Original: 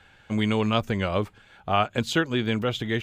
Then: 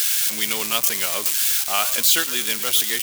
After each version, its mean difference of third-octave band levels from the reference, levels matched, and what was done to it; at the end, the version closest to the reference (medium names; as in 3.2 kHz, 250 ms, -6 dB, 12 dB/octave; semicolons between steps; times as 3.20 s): 17.5 dB: zero-crossing glitches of -17.5 dBFS; high-pass 260 Hz 12 dB/octave; tilt shelf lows -9 dB, about 1.3 kHz; on a send: frequency-shifting echo 110 ms, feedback 31%, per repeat -71 Hz, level -15 dB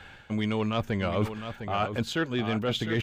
5.0 dB: peaking EQ 9 kHz -3.5 dB 1.5 oct; reverse; compression 6:1, threshold -32 dBFS, peak gain reduction 14 dB; reverse; saturation -23 dBFS, distortion -23 dB; delay 706 ms -9 dB; trim +7.5 dB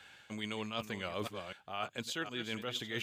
8.0 dB: chunks repeated in reverse 255 ms, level -13 dB; high-pass 200 Hz 6 dB/octave; treble shelf 2.3 kHz +10.5 dB; reverse; compression 10:1, threshold -30 dBFS, peak gain reduction 15.5 dB; reverse; trim -5 dB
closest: second